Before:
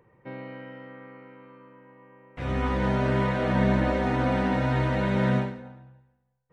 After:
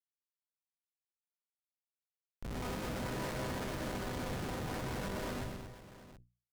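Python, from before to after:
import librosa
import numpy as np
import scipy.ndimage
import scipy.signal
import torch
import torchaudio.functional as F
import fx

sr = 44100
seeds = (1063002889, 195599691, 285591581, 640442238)

y = fx.filter_sweep_bandpass(x, sr, from_hz=2100.0, to_hz=960.0, start_s=4.48, end_s=5.69, q=0.81)
y = fx.rider(y, sr, range_db=10, speed_s=2.0)
y = fx.schmitt(y, sr, flips_db=-31.5)
y = fx.hum_notches(y, sr, base_hz=60, count=3)
y = fx.tube_stage(y, sr, drive_db=50.0, bias=0.7)
y = fx.echo_multitap(y, sr, ms=(125, 223, 501, 722), db=(-7.0, -8.0, -18.0, -15.5))
y = y * 10.0 ** (10.5 / 20.0)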